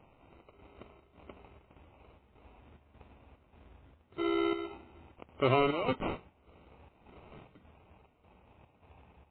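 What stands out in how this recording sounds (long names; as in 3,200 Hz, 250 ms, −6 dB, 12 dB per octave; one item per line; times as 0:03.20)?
chopped level 1.7 Hz, depth 60%, duty 70%
aliases and images of a low sample rate 1,700 Hz, jitter 0%
MP3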